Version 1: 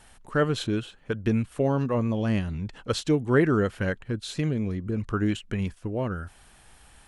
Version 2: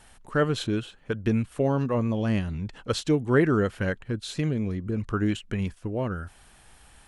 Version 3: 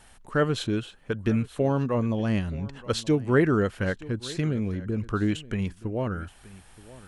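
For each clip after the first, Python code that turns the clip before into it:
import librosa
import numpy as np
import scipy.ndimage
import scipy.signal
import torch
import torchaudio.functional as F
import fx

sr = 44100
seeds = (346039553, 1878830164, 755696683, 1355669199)

y1 = x
y2 = y1 + 10.0 ** (-19.5 / 20.0) * np.pad(y1, (int(924 * sr / 1000.0), 0))[:len(y1)]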